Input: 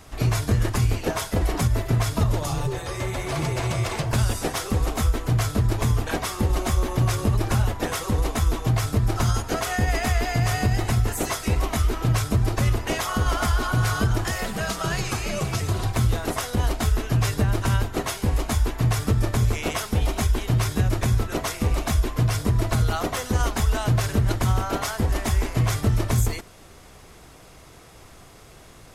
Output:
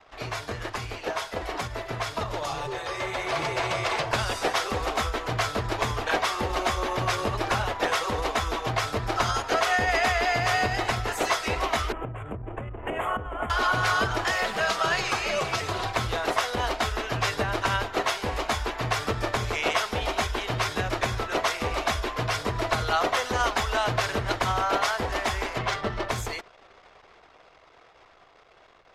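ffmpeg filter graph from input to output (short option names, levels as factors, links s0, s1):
-filter_complex "[0:a]asettb=1/sr,asplit=3[s0][s1][s2];[s0]atrim=end=11.924[s3];[s1]atrim=start=11.92:end=13.5,asetpts=PTS-STARTPTS,afade=t=in:d=0.004:c=qsin,afade=t=out:st=1.576:d=0.004:c=qsin,tiltshelf=f=680:g=8.5,acompressor=threshold=0.0708:ratio=6:attack=3.2:release=140:knee=1:detection=peak,asuperstop=centerf=4900:order=8:qfactor=1.1[s4];[s2]atrim=start=13.496[s5];[s3][s4]acrossfade=d=0.004:c1=hsin:c2=qsin[s6];[s6][s5]acrossfade=d=0.004:c1=qsin:c2=hsin,asettb=1/sr,asplit=3[s7][s8][s9];[s7]atrim=end=25.584[s10];[s8]atrim=start=25.58:end=26.09,asetpts=PTS-STARTPTS,afade=t=in:d=0.004:c=qsin,afade=t=out:st=0.506:d=0.004:c=qsin,adynamicsmooth=sensitivity=7.5:basefreq=2100,bandreject=f=2400:w=23,aecho=1:1:5.1:0.41,atrim=end_sample=22491[s11];[s9]atrim=start=26.086[s12];[s10][s11]acrossfade=d=0.004:c1=hsin:c2=qsin[s13];[s13][s12]acrossfade=d=0.004:c1=qsin:c2=hsin,acrossover=split=430 5300:gain=0.141 1 0.158[s14][s15][s16];[s14][s15][s16]amix=inputs=3:normalize=0,anlmdn=0.00251,dynaudnorm=f=180:g=31:m=2,volume=0.891"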